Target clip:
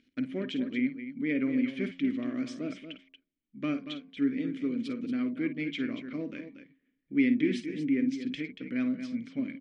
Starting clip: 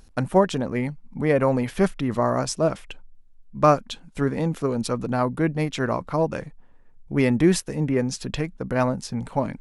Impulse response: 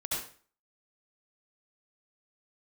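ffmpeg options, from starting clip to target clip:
-filter_complex "[0:a]bandreject=f=89.02:t=h:w=4,bandreject=f=178.04:t=h:w=4,bandreject=f=267.06:t=h:w=4,bandreject=f=356.08:t=h:w=4,bandreject=f=445.1:t=h:w=4,bandreject=f=534.12:t=h:w=4,bandreject=f=623.14:t=h:w=4,bandreject=f=712.16:t=h:w=4,bandreject=f=801.18:t=h:w=4,bandreject=f=890.2:t=h:w=4,bandreject=f=979.22:t=h:w=4,bandreject=f=1.06824k:t=h:w=4,bandreject=f=1.15726k:t=h:w=4,acontrast=38,asplit=2[a][b];[b]highpass=f=720:p=1,volume=6dB,asoftclip=type=tanh:threshold=-2dB[c];[a][c]amix=inputs=2:normalize=0,lowpass=f=3.7k:p=1,volume=-6dB,asplit=3[d][e][f];[d]bandpass=f=270:t=q:w=8,volume=0dB[g];[e]bandpass=f=2.29k:t=q:w=8,volume=-6dB[h];[f]bandpass=f=3.01k:t=q:w=8,volume=-9dB[i];[g][h][i]amix=inputs=3:normalize=0,asplit=2[j][k];[k]aecho=0:1:52.48|233.2:0.251|0.316[l];[j][l]amix=inputs=2:normalize=0" -ar 44100 -c:a libmp3lame -b:a 48k

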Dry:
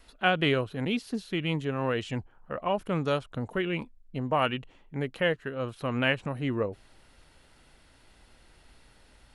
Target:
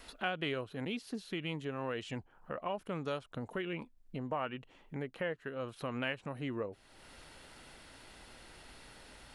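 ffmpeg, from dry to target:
-filter_complex "[0:a]asettb=1/sr,asplit=3[a][b][c];[a]atrim=end=3.734[d];[b]atrim=start=3.73:end=5.48,asetpts=PTS-STARTPTS,afade=t=in:d=0.004:c=qsin,afade=t=out:st=1.746:d=0.004:c=qsin,acrossover=split=2600[e][f];[f]acompressor=threshold=-51dB:ratio=4:attack=1:release=60[g];[e][g]amix=inputs=2:normalize=0[h];[c]atrim=start=5.476[i];[d][h]acrossfade=d=0.004:c1=hsin:c2=qsin[j];[j][i]acrossfade=d=0.004:c1=qsin:c2=hsin,lowshelf=f=120:g=-9,acompressor=threshold=-53dB:ratio=2,volume=6dB"

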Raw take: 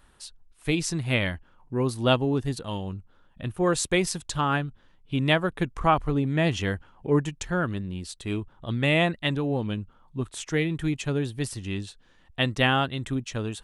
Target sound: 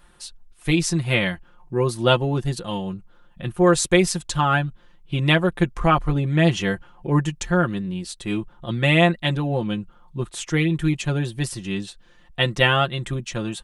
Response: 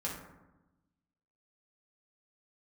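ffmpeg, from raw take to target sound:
-af "aecho=1:1:5.7:0.71,volume=3dB"

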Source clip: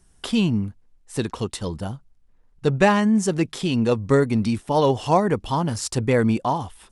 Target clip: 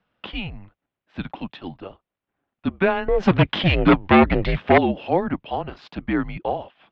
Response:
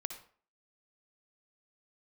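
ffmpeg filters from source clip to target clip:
-filter_complex "[0:a]asettb=1/sr,asplit=3[a][b][c];[a]atrim=end=3.084[d];[b]atrim=start=3.08:end=4.78,asetpts=PTS-STARTPTS,afade=t=in:d=0.004:c=qsin,afade=t=out:st=1.696:d=0.004:c=qsin,aeval=exprs='0.501*sin(PI/2*3.55*val(0)/0.501)':c=same[e];[c]atrim=start=4.776[f];[d][e]acrossfade=d=0.004:c1=hsin:c2=qsin[g];[g][f]acrossfade=d=0.004:c1=qsin:c2=hsin,highpass=f=320:t=q:w=0.5412,highpass=f=320:t=q:w=1.307,lowpass=f=3.6k:t=q:w=0.5176,lowpass=f=3.6k:t=q:w=0.7071,lowpass=f=3.6k:t=q:w=1.932,afreqshift=-190,volume=-1.5dB"

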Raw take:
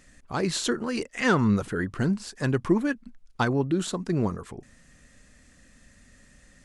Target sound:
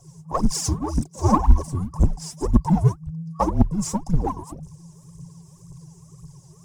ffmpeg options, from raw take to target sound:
-filter_complex "[0:a]afftfilt=real='re*(1-between(b*sr/4096,1300,5000))':imag='im*(1-between(b*sr/4096,1300,5000))':win_size=4096:overlap=0.75,aphaser=in_gain=1:out_gain=1:delay=3.9:decay=0.79:speed=1.9:type=triangular,afreqshift=-170,asplit=2[a][b];[b]asoftclip=type=tanh:threshold=-28dB,volume=-10.5dB[c];[a][c]amix=inputs=2:normalize=0,equalizer=f=1.3k:w=1.2:g=5.5"

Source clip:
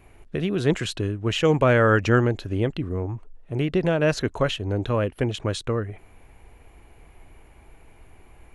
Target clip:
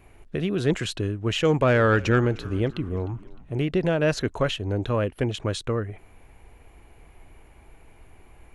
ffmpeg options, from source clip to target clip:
-filter_complex "[0:a]acontrast=61,asettb=1/sr,asplit=3[a][b][c];[a]atrim=end=1.374[d];[b]atrim=start=1.37:end=3.71,asetpts=PTS-STARTPTS,afade=t=in:d=0.004:c=qsin,afade=t=out:st=2.336:d=0.004:c=qsin,asplit=5[e][f][g][h][i];[f]adelay=305,afreqshift=-63,volume=-20.5dB[j];[g]adelay=610,afreqshift=-126,volume=-26.7dB[k];[h]adelay=915,afreqshift=-189,volume=-32.9dB[l];[i]adelay=1220,afreqshift=-252,volume=-39.1dB[m];[e][j][k][l][m]amix=inputs=5:normalize=0,atrim=end_sample=103194[n];[c]atrim=start=3.706[o];[d][n]acrossfade=d=0.004:c1=hsin:c2=qsin[p];[p][o]acrossfade=d=0.004:c1=qsin:c2=hsin,volume=-7dB"

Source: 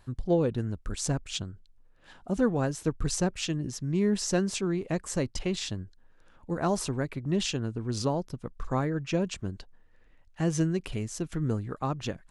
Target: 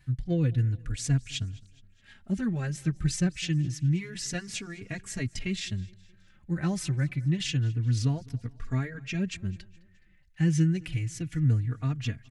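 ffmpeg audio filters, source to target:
-filter_complex "[0:a]equalizer=f=125:t=o:w=1:g=10,equalizer=f=500:t=o:w=1:g=-8,equalizer=f=1k:t=o:w=1:g=-11,equalizer=f=2k:t=o:w=1:g=10,asplit=2[a][b];[b]aecho=0:1:210|420|630:0.0668|0.0341|0.0174[c];[a][c]amix=inputs=2:normalize=0,asplit=2[d][e];[e]adelay=3.5,afreqshift=-0.28[f];[d][f]amix=inputs=2:normalize=1"

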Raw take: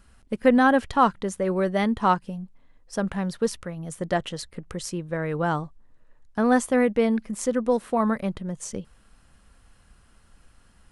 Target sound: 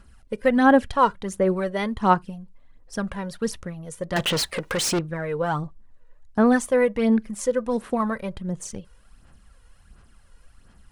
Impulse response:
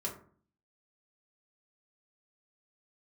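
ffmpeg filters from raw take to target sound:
-filter_complex "[0:a]aphaser=in_gain=1:out_gain=1:delay=2.1:decay=0.53:speed=1.4:type=sinusoidal,asettb=1/sr,asplit=3[a][b][c];[a]atrim=end=4.164[d];[b]atrim=start=4.16:end=4.99,asetpts=PTS-STARTPTS,afade=t=in:d=0.004:c=qsin,afade=t=out:st=0.826:d=0.004:c=qsin,asplit=2[e][f];[f]highpass=f=720:p=1,volume=30dB,asoftclip=type=tanh:threshold=-14dB[g];[e][g]amix=inputs=2:normalize=0,lowpass=f=7.2k:p=1,volume=-6dB[h];[c]atrim=start=4.986[i];[d][h]acrossfade=d=0.004:c1=hsin:c2=qsin[j];[j][i]acrossfade=d=0.004:c1=qsin:c2=hsin,asplit=2[k][l];[1:a]atrim=start_sample=2205,atrim=end_sample=3528[m];[l][m]afir=irnorm=-1:irlink=0,volume=-23.5dB[n];[k][n]amix=inputs=2:normalize=0,volume=-2dB"

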